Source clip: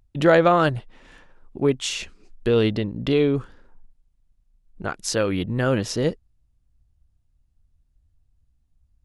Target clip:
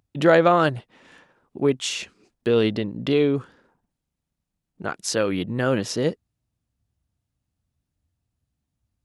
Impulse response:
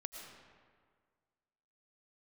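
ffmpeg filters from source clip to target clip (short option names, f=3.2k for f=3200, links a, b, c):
-af "highpass=130"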